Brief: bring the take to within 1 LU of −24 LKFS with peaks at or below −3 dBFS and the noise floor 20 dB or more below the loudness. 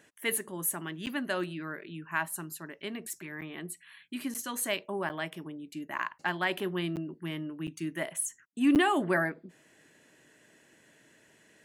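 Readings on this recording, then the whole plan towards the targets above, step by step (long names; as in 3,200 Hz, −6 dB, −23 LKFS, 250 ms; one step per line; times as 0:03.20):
number of dropouts 8; longest dropout 8.6 ms; integrated loudness −33.0 LKFS; sample peak −15.5 dBFS; target loudness −24.0 LKFS
→ repair the gap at 0:01.06/0:03.41/0:04.34/0:05.09/0:05.98/0:06.96/0:07.67/0:08.75, 8.6 ms
level +9 dB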